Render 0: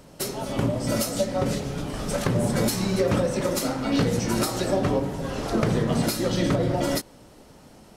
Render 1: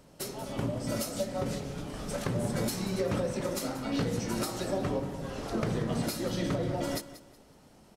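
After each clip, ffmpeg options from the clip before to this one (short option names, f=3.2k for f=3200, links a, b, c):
-af "aecho=1:1:185|370|555:0.178|0.0516|0.015,volume=-8dB"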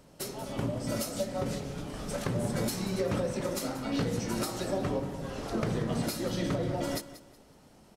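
-af anull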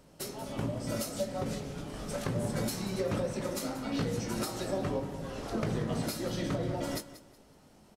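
-filter_complex "[0:a]asplit=2[a][b];[b]adelay=19,volume=-11.5dB[c];[a][c]amix=inputs=2:normalize=0,volume=-2dB"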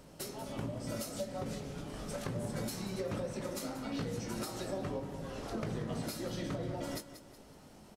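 -af "acompressor=threshold=-54dB:ratio=1.5,volume=3.5dB"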